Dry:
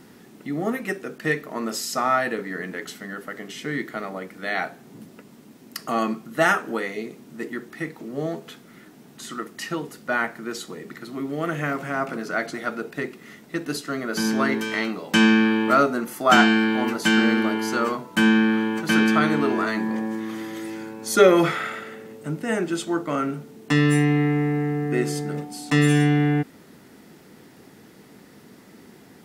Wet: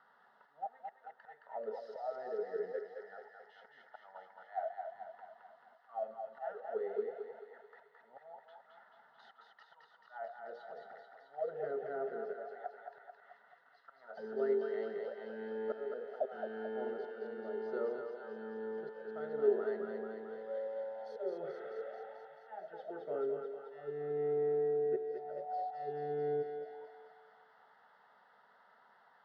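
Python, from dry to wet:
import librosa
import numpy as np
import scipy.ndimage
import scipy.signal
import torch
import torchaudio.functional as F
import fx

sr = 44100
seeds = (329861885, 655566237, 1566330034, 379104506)

p1 = scipy.signal.sosfilt(scipy.signal.butter(2, 4800.0, 'lowpass', fs=sr, output='sos'), x)
p2 = fx.low_shelf(p1, sr, hz=240.0, db=-8.0)
p3 = fx.auto_swell(p2, sr, attack_ms=607.0)
p4 = fx.auto_wah(p3, sr, base_hz=400.0, top_hz=1200.0, q=13.0, full_db=-29.0, direction='down')
p5 = fx.fixed_phaser(p4, sr, hz=1600.0, stages=8)
p6 = p5 + fx.echo_thinned(p5, sr, ms=218, feedback_pct=76, hz=680.0, wet_db=-3, dry=0)
y = p6 * librosa.db_to_amplitude(11.0)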